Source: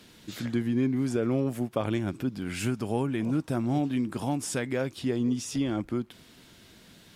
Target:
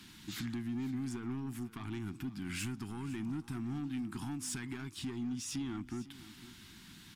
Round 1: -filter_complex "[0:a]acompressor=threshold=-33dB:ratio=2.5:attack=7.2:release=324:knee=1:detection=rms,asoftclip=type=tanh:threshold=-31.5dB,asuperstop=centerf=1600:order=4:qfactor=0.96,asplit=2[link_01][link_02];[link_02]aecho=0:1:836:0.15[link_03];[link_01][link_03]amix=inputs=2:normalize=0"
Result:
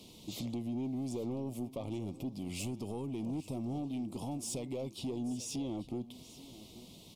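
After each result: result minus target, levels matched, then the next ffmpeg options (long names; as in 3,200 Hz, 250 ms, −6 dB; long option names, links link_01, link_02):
echo 333 ms late; 2,000 Hz band −9.5 dB
-filter_complex "[0:a]acompressor=threshold=-33dB:ratio=2.5:attack=7.2:release=324:knee=1:detection=rms,asoftclip=type=tanh:threshold=-31.5dB,asuperstop=centerf=1600:order=4:qfactor=0.96,asplit=2[link_01][link_02];[link_02]aecho=0:1:503:0.15[link_03];[link_01][link_03]amix=inputs=2:normalize=0"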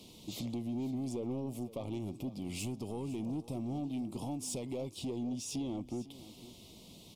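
2,000 Hz band −9.5 dB
-filter_complex "[0:a]acompressor=threshold=-33dB:ratio=2.5:attack=7.2:release=324:knee=1:detection=rms,asoftclip=type=tanh:threshold=-31.5dB,asuperstop=centerf=540:order=4:qfactor=0.96,asplit=2[link_01][link_02];[link_02]aecho=0:1:503:0.15[link_03];[link_01][link_03]amix=inputs=2:normalize=0"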